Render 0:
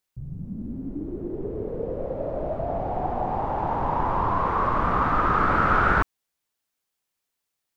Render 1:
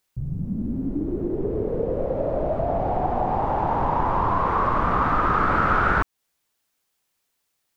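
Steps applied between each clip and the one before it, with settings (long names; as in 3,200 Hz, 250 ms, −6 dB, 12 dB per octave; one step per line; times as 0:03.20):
downward compressor 2 to 1, threshold −29 dBFS, peak gain reduction 7.5 dB
level +7 dB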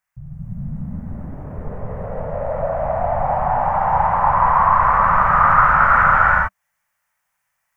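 drawn EQ curve 190 Hz 0 dB, 330 Hz −24 dB, 620 Hz +2 dB, 980 Hz +6 dB, 1,900 Hz +9 dB, 3,900 Hz −12 dB, 5,800 Hz −3 dB
reverb whose tail is shaped and stops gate 470 ms rising, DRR −7.5 dB
level −6 dB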